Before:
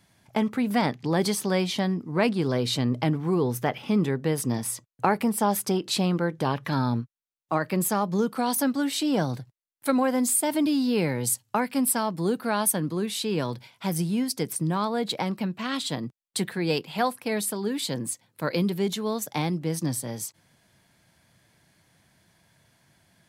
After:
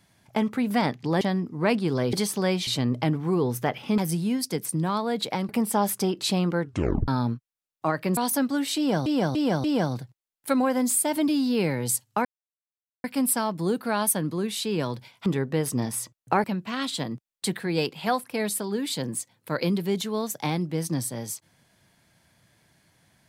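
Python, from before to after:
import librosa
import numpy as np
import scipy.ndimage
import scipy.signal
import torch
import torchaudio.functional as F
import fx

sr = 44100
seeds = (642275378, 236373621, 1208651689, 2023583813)

y = fx.edit(x, sr, fx.move(start_s=1.21, length_s=0.54, to_s=2.67),
    fx.swap(start_s=3.98, length_s=1.18, other_s=13.85, other_length_s=1.51),
    fx.tape_stop(start_s=6.28, length_s=0.47),
    fx.cut(start_s=7.84, length_s=0.58),
    fx.repeat(start_s=9.02, length_s=0.29, count=4),
    fx.insert_silence(at_s=11.63, length_s=0.79), tone=tone)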